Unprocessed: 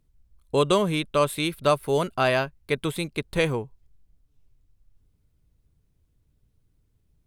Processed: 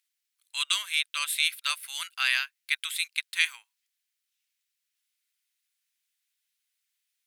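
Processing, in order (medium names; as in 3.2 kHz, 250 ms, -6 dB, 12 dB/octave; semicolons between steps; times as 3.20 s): inverse Chebyshev high-pass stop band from 410 Hz, stop band 70 dB; trim +5 dB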